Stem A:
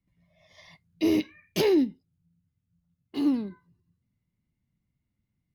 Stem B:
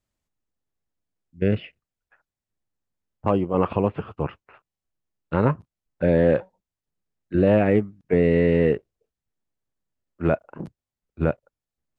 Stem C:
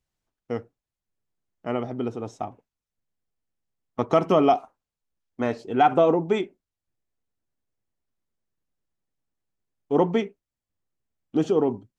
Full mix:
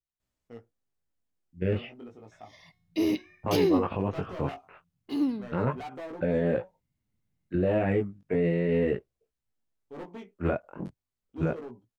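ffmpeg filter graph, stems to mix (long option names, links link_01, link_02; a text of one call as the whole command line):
ffmpeg -i stem1.wav -i stem2.wav -i stem3.wav -filter_complex "[0:a]bandreject=frequency=363.5:width_type=h:width=4,bandreject=frequency=727:width_type=h:width=4,bandreject=frequency=1090.5:width_type=h:width=4,bandreject=frequency=1454:width_type=h:width=4,bandreject=frequency=1817.5:width_type=h:width=4,bandreject=frequency=2181:width_type=h:width=4,bandreject=frequency=2544.5:width_type=h:width=4,bandreject=frequency=2908:width_type=h:width=4,bandreject=frequency=3271.5:width_type=h:width=4,bandreject=frequency=3635:width_type=h:width=4,bandreject=frequency=3998.5:width_type=h:width=4,bandreject=frequency=4362:width_type=h:width=4,bandreject=frequency=4725.5:width_type=h:width=4,bandreject=frequency=5089:width_type=h:width=4,bandreject=frequency=5452.5:width_type=h:width=4,bandreject=frequency=5816:width_type=h:width=4,bandreject=frequency=6179.5:width_type=h:width=4,bandreject=frequency=6543:width_type=h:width=4,bandreject=frequency=6906.5:width_type=h:width=4,bandreject=frequency=7270:width_type=h:width=4,bandreject=frequency=7633.5:width_type=h:width=4,bandreject=frequency=7997:width_type=h:width=4,bandreject=frequency=8360.5:width_type=h:width=4,bandreject=frequency=8724:width_type=h:width=4,bandreject=frequency=9087.5:width_type=h:width=4,adelay=1950,volume=-2.5dB[link_01];[1:a]adelay=200,volume=0.5dB[link_02];[2:a]asoftclip=type=hard:threshold=-19.5dB,volume=-14dB[link_03];[link_02][link_03]amix=inputs=2:normalize=0,flanger=delay=15.5:depth=6.8:speed=0.33,alimiter=limit=-17dB:level=0:latency=1:release=51,volume=0dB[link_04];[link_01][link_04]amix=inputs=2:normalize=0" out.wav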